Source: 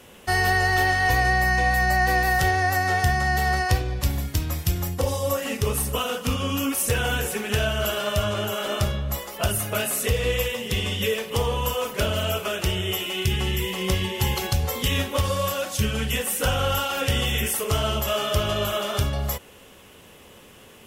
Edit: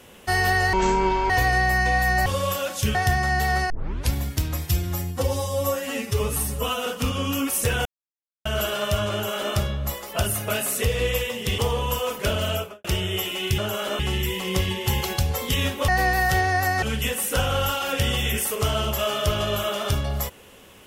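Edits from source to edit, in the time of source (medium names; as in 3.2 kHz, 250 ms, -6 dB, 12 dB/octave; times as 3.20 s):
0.73–1.02 s: speed 51%
1.98–2.92 s: swap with 15.22–15.91 s
3.67 s: tape start 0.41 s
4.66–6.11 s: stretch 1.5×
7.10–7.70 s: mute
8.37–8.78 s: copy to 13.33 s
10.83–11.33 s: delete
12.26–12.59 s: studio fade out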